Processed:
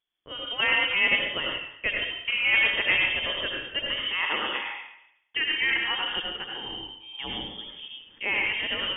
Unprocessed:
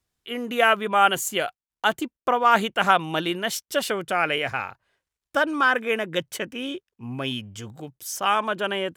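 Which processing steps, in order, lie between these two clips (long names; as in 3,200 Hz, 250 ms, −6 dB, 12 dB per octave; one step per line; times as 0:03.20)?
0:06.16–0:07.19: high-pass filter 230 Hz 24 dB per octave
convolution reverb RT60 0.80 s, pre-delay 68 ms, DRR −1 dB
voice inversion scrambler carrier 3,400 Hz
level −7 dB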